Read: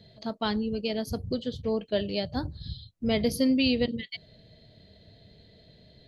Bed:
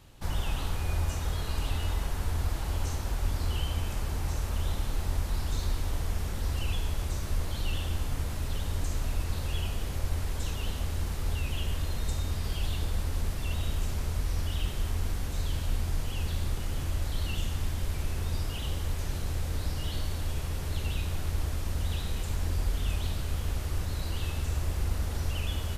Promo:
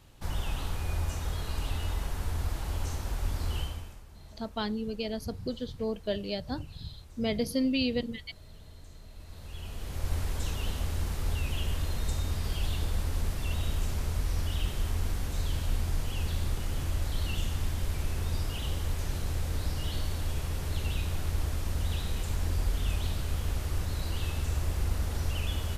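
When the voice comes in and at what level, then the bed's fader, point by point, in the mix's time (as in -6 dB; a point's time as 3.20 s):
4.15 s, -4.0 dB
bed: 3.61 s -2 dB
4.05 s -19.5 dB
9.08 s -19.5 dB
10.12 s 0 dB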